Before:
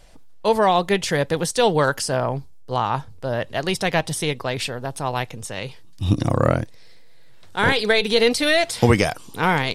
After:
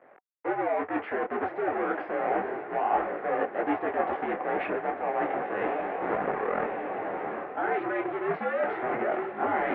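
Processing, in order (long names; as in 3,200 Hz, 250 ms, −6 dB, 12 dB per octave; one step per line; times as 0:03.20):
each half-wave held at its own peak
brickwall limiter −13 dBFS, peak gain reduction 10 dB
speech leveller within 4 dB 0.5 s
on a send: feedback delay with all-pass diffusion 1,065 ms, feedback 60%, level −11 dB
on the sum: single-sideband voice off tune −82 Hz 390–2,100 Hz
reversed playback
downward compressor, threshold −29 dBFS, peak gain reduction 13 dB
reversed playback
parametric band 750 Hz +9.5 dB 0.2 octaves
notch filter 950 Hz, Q 23
micro pitch shift up and down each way 11 cents
level +6 dB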